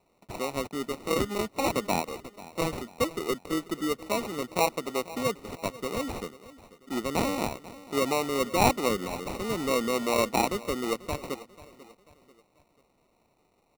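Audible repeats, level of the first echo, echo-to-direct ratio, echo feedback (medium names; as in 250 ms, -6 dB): 3, -18.0 dB, -17.0 dB, 42%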